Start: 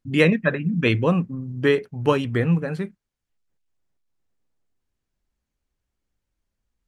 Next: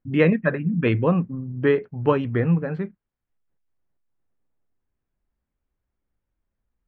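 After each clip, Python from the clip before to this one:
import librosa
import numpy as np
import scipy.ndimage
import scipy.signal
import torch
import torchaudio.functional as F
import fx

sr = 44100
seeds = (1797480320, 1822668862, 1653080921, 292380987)

y = scipy.signal.sosfilt(scipy.signal.butter(2, 1900.0, 'lowpass', fs=sr, output='sos'), x)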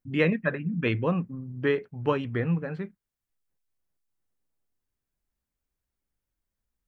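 y = fx.high_shelf(x, sr, hz=2800.0, db=11.5)
y = y * 10.0 ** (-6.5 / 20.0)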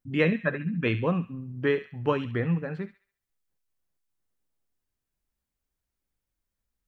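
y = fx.echo_wet_highpass(x, sr, ms=69, feedback_pct=39, hz=1600.0, wet_db=-10.5)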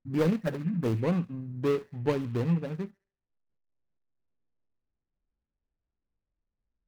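y = scipy.ndimage.median_filter(x, 41, mode='constant')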